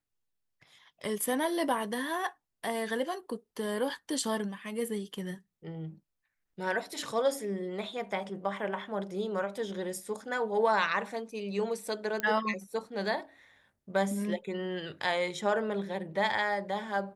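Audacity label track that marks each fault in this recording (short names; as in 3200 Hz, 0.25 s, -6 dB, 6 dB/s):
12.200000	12.200000	pop -17 dBFS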